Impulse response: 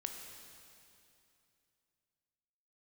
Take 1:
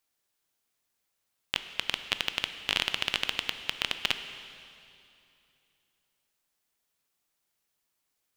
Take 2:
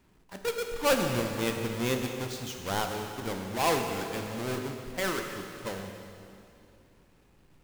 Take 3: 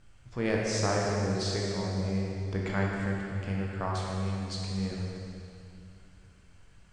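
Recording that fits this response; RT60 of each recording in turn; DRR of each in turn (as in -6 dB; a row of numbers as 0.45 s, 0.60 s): 2; 2.7 s, 2.7 s, 2.7 s; 9.0 dB, 3.5 dB, -3.0 dB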